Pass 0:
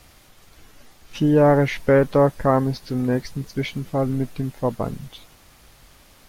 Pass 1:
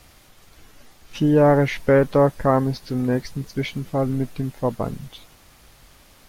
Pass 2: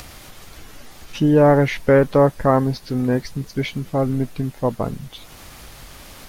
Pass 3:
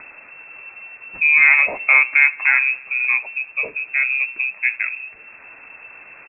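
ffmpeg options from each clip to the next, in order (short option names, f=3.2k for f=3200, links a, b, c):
-af anull
-af "acompressor=mode=upward:threshold=-32dB:ratio=2.5,volume=2dB"
-af "flanger=delay=1.3:depth=8.6:regen=-76:speed=0.99:shape=triangular,aecho=1:1:83|166|249|332:0.0708|0.0411|0.0238|0.0138,lowpass=f=2.3k:t=q:w=0.5098,lowpass=f=2.3k:t=q:w=0.6013,lowpass=f=2.3k:t=q:w=0.9,lowpass=f=2.3k:t=q:w=2.563,afreqshift=-2700,volume=4.5dB"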